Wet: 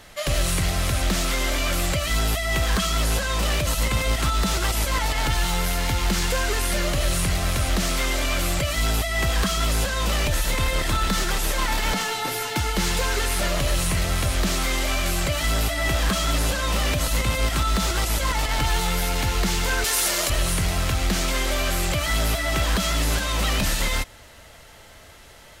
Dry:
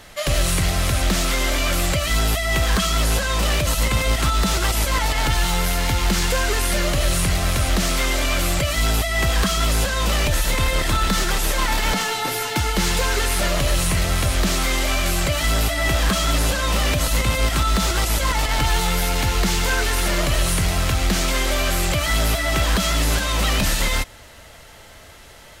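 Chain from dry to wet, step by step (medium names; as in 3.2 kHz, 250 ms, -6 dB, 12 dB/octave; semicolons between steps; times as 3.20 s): 19.84–20.30 s: tone controls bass -15 dB, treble +9 dB; trim -3 dB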